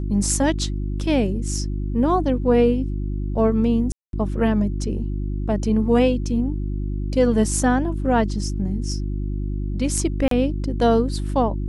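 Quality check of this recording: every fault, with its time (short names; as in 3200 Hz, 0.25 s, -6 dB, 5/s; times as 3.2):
hum 50 Hz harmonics 7 -25 dBFS
3.92–4.13 gap 0.212 s
10.28–10.31 gap 33 ms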